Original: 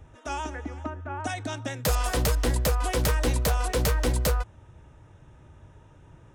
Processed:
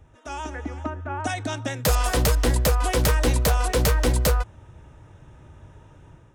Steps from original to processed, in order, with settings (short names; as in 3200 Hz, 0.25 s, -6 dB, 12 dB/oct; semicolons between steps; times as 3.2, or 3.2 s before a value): AGC gain up to 7 dB; gain -3 dB